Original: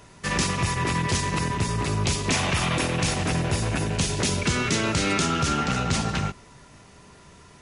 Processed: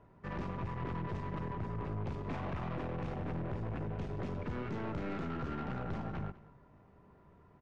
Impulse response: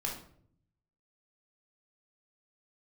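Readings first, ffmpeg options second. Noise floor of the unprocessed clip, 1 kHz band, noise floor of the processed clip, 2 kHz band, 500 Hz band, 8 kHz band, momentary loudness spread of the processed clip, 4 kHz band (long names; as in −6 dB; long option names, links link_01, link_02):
−50 dBFS, −15.0 dB, −62 dBFS, −21.0 dB, −12.0 dB, below −40 dB, 1 LU, −30.5 dB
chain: -filter_complex "[0:a]lowpass=1100,aeval=exprs='(tanh(20*val(0)+0.5)-tanh(0.5))/20':channel_layout=same,asplit=2[link_01][link_02];[link_02]aecho=0:1:202:0.106[link_03];[link_01][link_03]amix=inputs=2:normalize=0,volume=-8dB"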